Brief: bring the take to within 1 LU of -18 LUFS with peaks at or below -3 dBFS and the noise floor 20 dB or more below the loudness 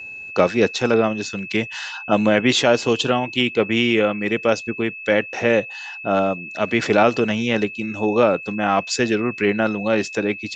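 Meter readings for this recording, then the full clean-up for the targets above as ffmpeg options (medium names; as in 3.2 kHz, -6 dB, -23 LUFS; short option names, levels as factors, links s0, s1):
steady tone 2.6 kHz; tone level -32 dBFS; loudness -20.0 LUFS; peak level -2.0 dBFS; loudness target -18.0 LUFS
-> -af "bandreject=f=2600:w=30"
-af "volume=1.26,alimiter=limit=0.708:level=0:latency=1"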